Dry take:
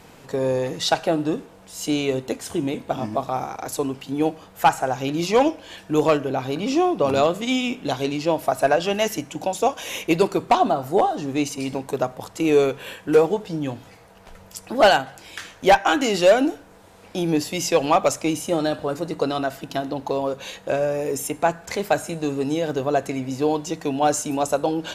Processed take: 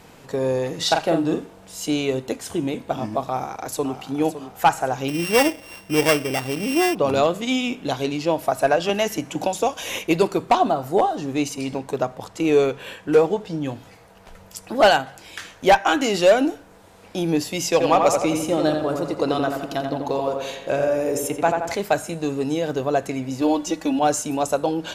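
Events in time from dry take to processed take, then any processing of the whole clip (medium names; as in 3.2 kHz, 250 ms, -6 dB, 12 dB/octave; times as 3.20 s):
0.74–1.79 s: doubling 43 ms -5 dB
3.26–3.99 s: echo throw 560 ms, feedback 40%, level -11 dB
5.08–6.95 s: sorted samples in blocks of 16 samples
8.89–9.99 s: three bands compressed up and down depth 70%
11.61–13.65 s: peaking EQ 13 kHz -6 dB 0.96 oct
17.64–21.74 s: filtered feedback delay 86 ms, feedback 58%, low-pass 2.7 kHz, level -4 dB
23.41–23.99 s: comb 3.5 ms, depth 85%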